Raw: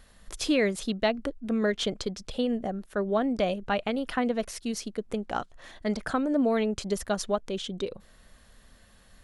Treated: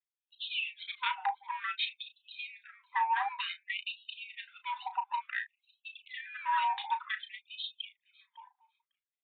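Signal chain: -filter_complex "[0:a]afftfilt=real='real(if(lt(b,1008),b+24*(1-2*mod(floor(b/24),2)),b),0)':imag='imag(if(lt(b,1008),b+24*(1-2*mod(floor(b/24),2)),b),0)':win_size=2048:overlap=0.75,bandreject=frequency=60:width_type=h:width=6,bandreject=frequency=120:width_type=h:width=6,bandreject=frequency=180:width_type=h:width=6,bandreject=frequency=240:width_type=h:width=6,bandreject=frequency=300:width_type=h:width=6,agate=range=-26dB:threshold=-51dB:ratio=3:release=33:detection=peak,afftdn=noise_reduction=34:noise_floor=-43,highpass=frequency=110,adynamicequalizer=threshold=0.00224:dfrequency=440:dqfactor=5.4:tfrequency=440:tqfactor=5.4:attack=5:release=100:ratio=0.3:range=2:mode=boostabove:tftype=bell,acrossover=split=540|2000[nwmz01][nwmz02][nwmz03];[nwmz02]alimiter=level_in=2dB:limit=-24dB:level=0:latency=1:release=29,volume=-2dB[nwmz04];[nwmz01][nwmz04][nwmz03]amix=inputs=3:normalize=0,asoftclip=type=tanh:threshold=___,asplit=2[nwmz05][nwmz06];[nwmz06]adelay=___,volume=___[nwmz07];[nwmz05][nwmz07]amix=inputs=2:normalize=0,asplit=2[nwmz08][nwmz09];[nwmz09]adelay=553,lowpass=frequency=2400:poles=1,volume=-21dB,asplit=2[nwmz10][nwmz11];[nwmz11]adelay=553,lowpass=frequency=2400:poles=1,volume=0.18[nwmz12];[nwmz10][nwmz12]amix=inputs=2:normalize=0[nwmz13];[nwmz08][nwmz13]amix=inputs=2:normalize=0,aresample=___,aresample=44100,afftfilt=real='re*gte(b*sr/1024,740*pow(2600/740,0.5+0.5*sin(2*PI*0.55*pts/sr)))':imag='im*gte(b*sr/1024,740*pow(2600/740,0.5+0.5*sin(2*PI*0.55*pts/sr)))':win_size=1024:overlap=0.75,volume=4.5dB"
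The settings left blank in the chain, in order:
-24dB, 34, -10dB, 8000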